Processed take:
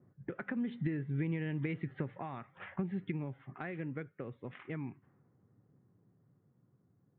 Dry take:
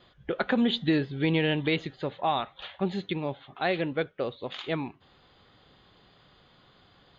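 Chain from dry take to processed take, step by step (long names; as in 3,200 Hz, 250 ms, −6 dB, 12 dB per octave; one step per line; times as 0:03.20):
source passing by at 0:02.00, 6 m/s, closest 3.3 metres
elliptic band-pass filter 110–2,100 Hz, stop band 40 dB
downward compressor 5 to 1, threshold −45 dBFS, peak gain reduction 19.5 dB
low-shelf EQ 270 Hz +7.5 dB
low-pass that shuts in the quiet parts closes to 550 Hz, open at −42.5 dBFS
parametric band 650 Hz −11 dB 1.6 octaves
level +10 dB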